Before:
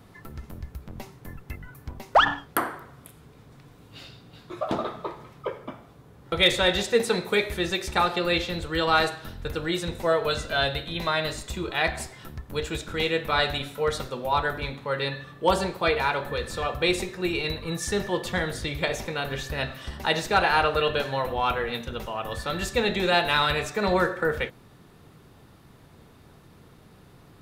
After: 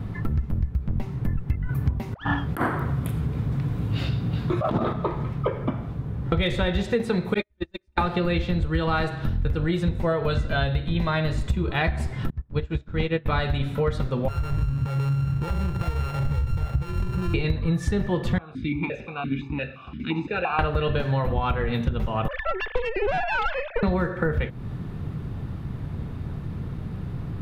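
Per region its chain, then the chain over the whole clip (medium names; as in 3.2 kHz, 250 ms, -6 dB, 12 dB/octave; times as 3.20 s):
1.69–4.93 s: high-pass 45 Hz + compressor with a negative ratio -30 dBFS, ratio -0.5 + treble shelf 10 kHz +6 dB
7.34–8.01 s: gate -22 dBFS, range -52 dB + comb 3.3 ms, depth 66%
12.30–13.26 s: median filter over 3 samples + distance through air 66 m + upward expansion 2.5:1, over -45 dBFS
14.28–17.34 s: sorted samples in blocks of 32 samples + compression, threshold -39 dBFS + resonant low shelf 160 Hz +8.5 dB, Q 1.5
18.38–20.59 s: comb 0.8 ms, depth 70% + stepped vowel filter 5.8 Hz
22.28–23.83 s: formants replaced by sine waves + valve stage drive 22 dB, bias 0.75
whole clip: tone controls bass +15 dB, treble -12 dB; compression 6:1, threshold -30 dBFS; trim +9 dB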